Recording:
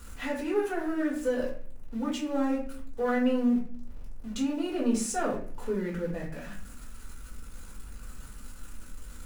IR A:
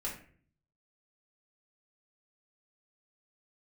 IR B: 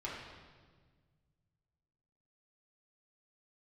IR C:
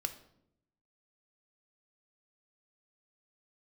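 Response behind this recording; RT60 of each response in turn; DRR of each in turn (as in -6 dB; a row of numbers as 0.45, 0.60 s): A; 0.50, 1.5, 0.75 s; -5.5, -7.0, 7.5 dB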